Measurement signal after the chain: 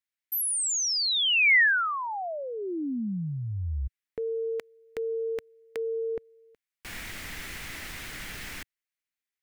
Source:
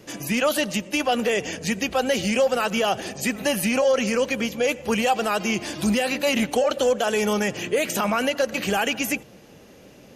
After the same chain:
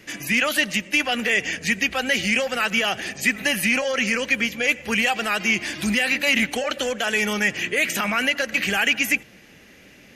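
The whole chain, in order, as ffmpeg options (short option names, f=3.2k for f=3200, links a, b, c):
-af "equalizer=f=125:t=o:w=1:g=-4,equalizer=f=500:t=o:w=1:g=-6,equalizer=f=1k:t=o:w=1:g=-5,equalizer=f=2k:t=o:w=1:g=11"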